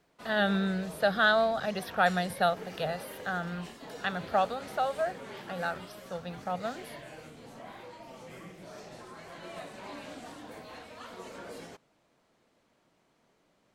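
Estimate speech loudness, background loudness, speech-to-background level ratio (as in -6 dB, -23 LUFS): -30.5 LUFS, -45.5 LUFS, 15.0 dB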